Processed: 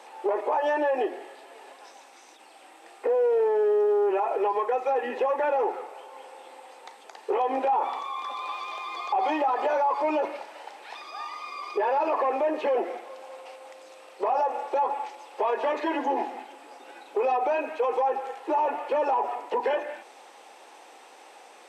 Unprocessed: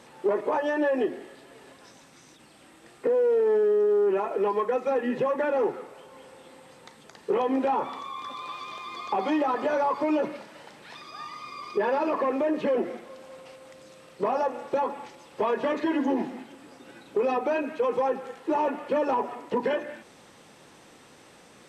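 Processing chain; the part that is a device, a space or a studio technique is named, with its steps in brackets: laptop speaker (HPF 350 Hz 24 dB/oct; bell 800 Hz +11 dB 0.54 oct; bell 2500 Hz +4 dB 0.44 oct; limiter -17.5 dBFS, peak gain reduction 9.5 dB)

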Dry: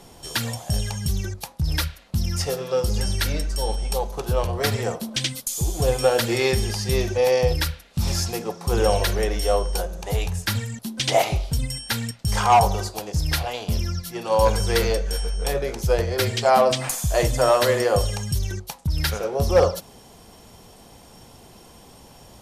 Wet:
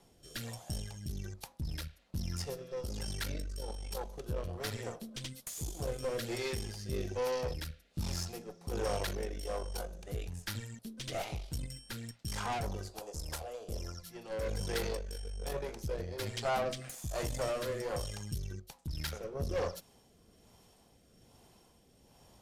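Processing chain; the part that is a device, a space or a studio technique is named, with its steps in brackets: overdriven rotary cabinet (tube stage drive 19 dB, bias 0.8; rotary speaker horn 1.2 Hz); 13.01–14.03 graphic EQ 125/250/500/1000/2000/4000/8000 Hz -9/-6/+8/+5/-5/-5/+6 dB; gain -8.5 dB

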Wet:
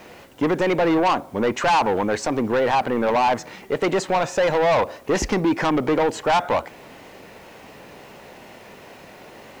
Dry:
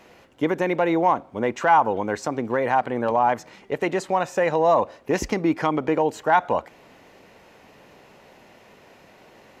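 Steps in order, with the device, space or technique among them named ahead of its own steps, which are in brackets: compact cassette (soft clip -22.5 dBFS, distortion -7 dB; LPF 8400 Hz; wow and flutter; white noise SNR 37 dB); gain +7.5 dB

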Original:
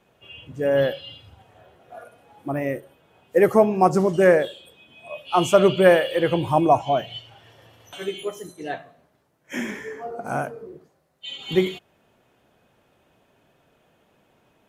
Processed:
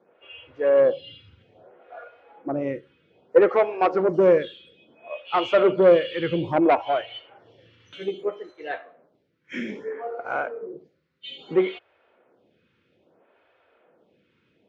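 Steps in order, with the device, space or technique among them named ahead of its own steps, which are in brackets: vibe pedal into a guitar amplifier (photocell phaser 0.61 Hz; tube stage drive 14 dB, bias 0.3; speaker cabinet 86–4500 Hz, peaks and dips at 130 Hz -4 dB, 340 Hz +4 dB, 500 Hz +8 dB, 1400 Hz +5 dB, 2200 Hz +5 dB)

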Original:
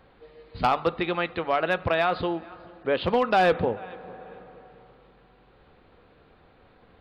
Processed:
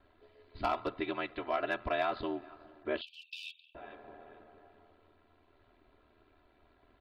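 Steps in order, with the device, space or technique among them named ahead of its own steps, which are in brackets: 3.01–3.75 Chebyshev high-pass 2500 Hz, order 10; ring-modulated robot voice (ring modulator 40 Hz; comb 3 ms, depth 77%); gain -8.5 dB

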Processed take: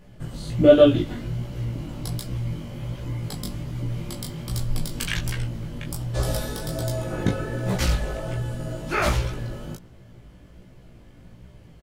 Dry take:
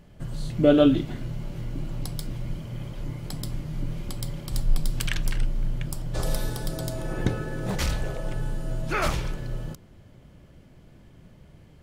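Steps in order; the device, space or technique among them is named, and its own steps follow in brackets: double-tracked vocal (doubler 17 ms -4 dB; chorus 1.3 Hz, delay 15 ms, depth 6.1 ms); gain +4.5 dB

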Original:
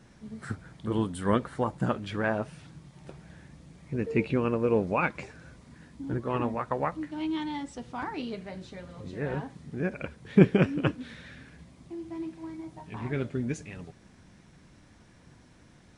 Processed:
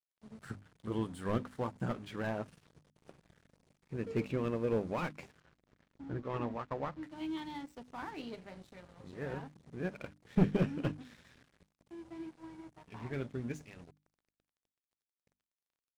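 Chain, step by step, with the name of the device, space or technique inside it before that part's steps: early transistor amplifier (crossover distortion -47.5 dBFS; slew limiter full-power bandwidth 48 Hz); notches 50/100/150/200/250/300 Hz; 5.4–7.03 air absorption 83 m; gain -6.5 dB

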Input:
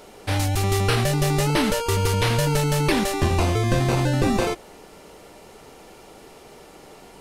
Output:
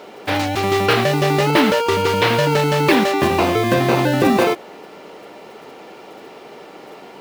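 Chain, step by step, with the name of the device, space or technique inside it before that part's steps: early digital voice recorder (BPF 210–3700 Hz; block floating point 5-bit); gain +8 dB

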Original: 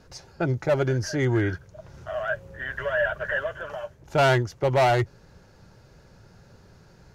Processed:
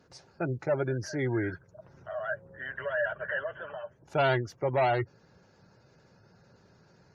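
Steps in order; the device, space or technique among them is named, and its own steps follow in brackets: noise-suppressed video call (HPF 120 Hz 12 dB/oct; spectral gate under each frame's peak -30 dB strong; gain -5.5 dB; Opus 32 kbps 48000 Hz)

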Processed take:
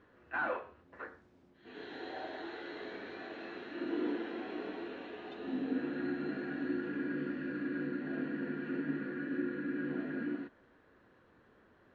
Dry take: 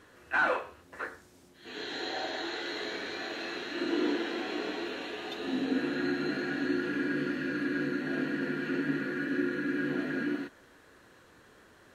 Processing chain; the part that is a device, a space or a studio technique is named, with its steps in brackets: phone in a pocket (LPF 3900 Hz 12 dB/oct; bell 220 Hz +3 dB 0.41 oct; high shelf 2400 Hz -10.5 dB); gain -5.5 dB

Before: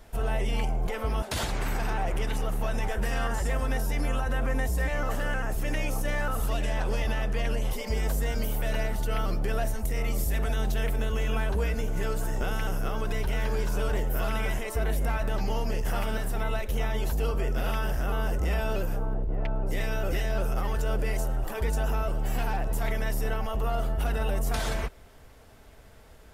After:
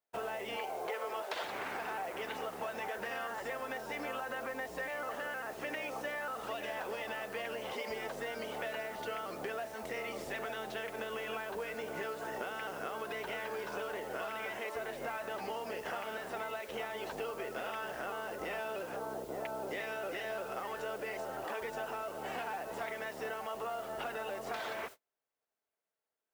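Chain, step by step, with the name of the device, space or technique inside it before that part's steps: baby monitor (BPF 430–3200 Hz; compressor 10:1, threshold -40 dBFS, peak gain reduction 11.5 dB; white noise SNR 18 dB; gate -51 dBFS, range -40 dB); 0.56–1.44 resonant low shelf 310 Hz -8 dB, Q 1.5; gain +4 dB

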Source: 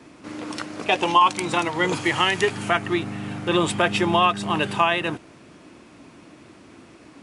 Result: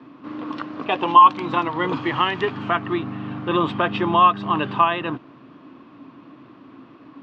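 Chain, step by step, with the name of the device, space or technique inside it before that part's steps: guitar cabinet (speaker cabinet 81–3600 Hz, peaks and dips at 85 Hz -6 dB, 130 Hz +6 dB, 270 Hz +10 dB, 1100 Hz +10 dB, 2200 Hz -5 dB); gain -2.5 dB

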